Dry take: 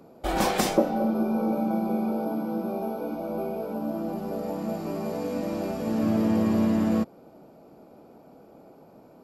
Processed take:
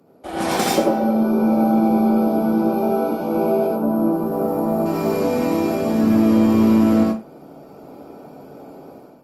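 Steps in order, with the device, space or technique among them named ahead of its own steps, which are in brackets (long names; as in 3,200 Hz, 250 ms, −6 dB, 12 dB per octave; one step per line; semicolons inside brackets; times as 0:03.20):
0:03.67–0:04.86: flat-topped bell 3,700 Hz −11.5 dB 2.4 octaves
far-field microphone of a smart speaker (convolution reverb RT60 0.30 s, pre-delay 73 ms, DRR −1.5 dB; high-pass filter 81 Hz 24 dB per octave; automatic gain control gain up to 11.5 dB; level −3.5 dB; Opus 32 kbit/s 48,000 Hz)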